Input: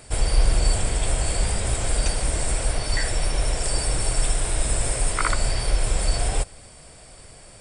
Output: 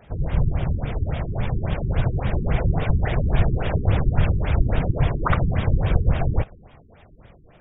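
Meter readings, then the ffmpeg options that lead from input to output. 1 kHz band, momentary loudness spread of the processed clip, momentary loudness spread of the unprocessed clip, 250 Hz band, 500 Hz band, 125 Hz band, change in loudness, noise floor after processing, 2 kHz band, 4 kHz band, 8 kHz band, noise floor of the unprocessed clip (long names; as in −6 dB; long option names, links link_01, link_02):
+0.5 dB, 5 LU, 3 LU, +8.5 dB, +1.5 dB, +7.0 dB, +1.0 dB, −51 dBFS, −2.5 dB, −11.5 dB, below −40 dB, −46 dBFS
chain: -af "dynaudnorm=framelen=420:gausssize=9:maxgain=11.5dB,afftfilt=real='hypot(re,im)*cos(2*PI*random(0))':imag='hypot(re,im)*sin(2*PI*random(1))':win_size=512:overlap=0.75,afftfilt=real='re*lt(b*sr/1024,390*pow(3800/390,0.5+0.5*sin(2*PI*3.6*pts/sr)))':imag='im*lt(b*sr/1024,390*pow(3800/390,0.5+0.5*sin(2*PI*3.6*pts/sr)))':win_size=1024:overlap=0.75,volume=4dB"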